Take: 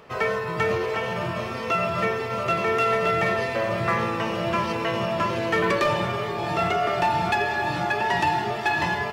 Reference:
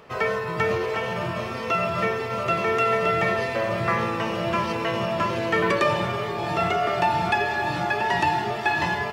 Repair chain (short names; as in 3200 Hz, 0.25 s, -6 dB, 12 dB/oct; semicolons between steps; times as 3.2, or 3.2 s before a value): clip repair -15.5 dBFS